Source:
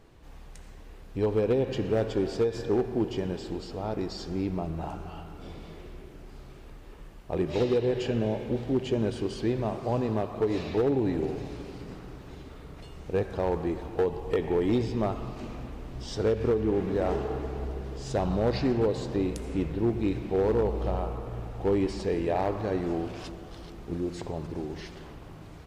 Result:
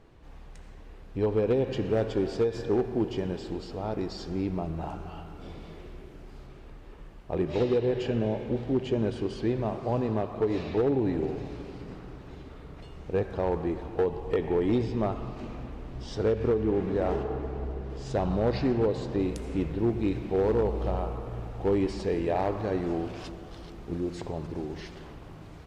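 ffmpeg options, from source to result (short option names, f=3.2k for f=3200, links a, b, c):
-af "asetnsamples=n=441:p=0,asendcmd='1.47 lowpass f 6100;6.46 lowpass f 3700;17.23 lowpass f 1900;17.9 lowpass f 4000;19.19 lowpass f 7900',lowpass=f=3.7k:p=1"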